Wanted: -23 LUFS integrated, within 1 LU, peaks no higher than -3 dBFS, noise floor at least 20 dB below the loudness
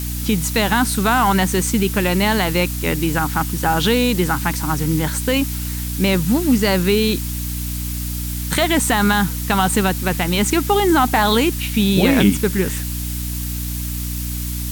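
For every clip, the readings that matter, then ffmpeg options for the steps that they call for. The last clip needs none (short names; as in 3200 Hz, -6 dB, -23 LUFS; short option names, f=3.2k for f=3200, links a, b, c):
hum 60 Hz; harmonics up to 300 Hz; hum level -23 dBFS; noise floor -25 dBFS; noise floor target -38 dBFS; loudness -18.0 LUFS; peak -3.0 dBFS; loudness target -23.0 LUFS
-> -af "bandreject=f=60:t=h:w=6,bandreject=f=120:t=h:w=6,bandreject=f=180:t=h:w=6,bandreject=f=240:t=h:w=6,bandreject=f=300:t=h:w=6"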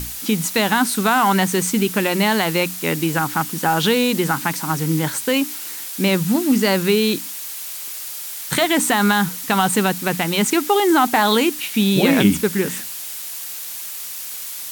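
hum none; noise floor -31 dBFS; noise floor target -39 dBFS
-> -af "afftdn=nr=8:nf=-31"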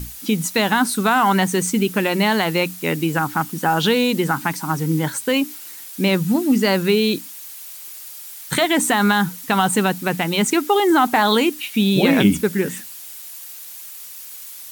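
noise floor -37 dBFS; noise floor target -39 dBFS
-> -af "afftdn=nr=6:nf=-37"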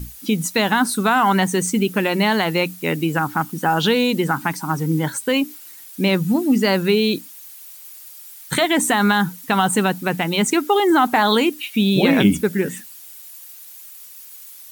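noise floor -41 dBFS; loudness -18.5 LUFS; peak -4.0 dBFS; loudness target -23.0 LUFS
-> -af "volume=-4.5dB"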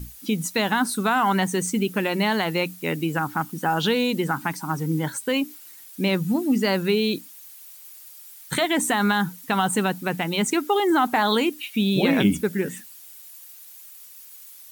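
loudness -23.0 LUFS; peak -8.5 dBFS; noise floor -45 dBFS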